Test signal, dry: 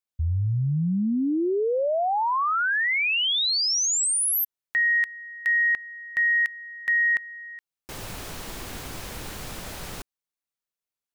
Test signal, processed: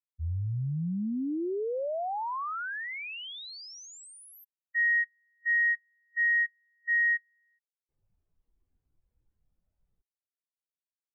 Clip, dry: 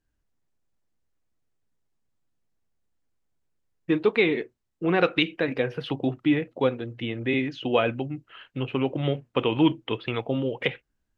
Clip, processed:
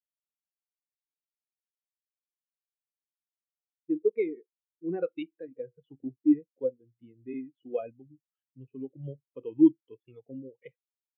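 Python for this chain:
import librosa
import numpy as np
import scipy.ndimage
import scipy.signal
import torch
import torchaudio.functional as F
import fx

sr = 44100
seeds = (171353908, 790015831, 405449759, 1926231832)

y = fx.spectral_expand(x, sr, expansion=2.5)
y = F.gain(torch.from_numpy(y), -3.5).numpy()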